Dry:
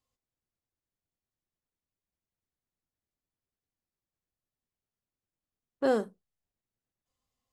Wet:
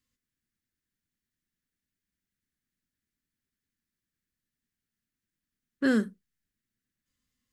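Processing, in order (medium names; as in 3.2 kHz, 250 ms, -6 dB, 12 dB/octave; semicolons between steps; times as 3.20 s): FFT filter 130 Hz 0 dB, 230 Hz +7 dB, 800 Hz -18 dB, 1.7 kHz +7 dB, 2.5 kHz +1 dB; trim +3 dB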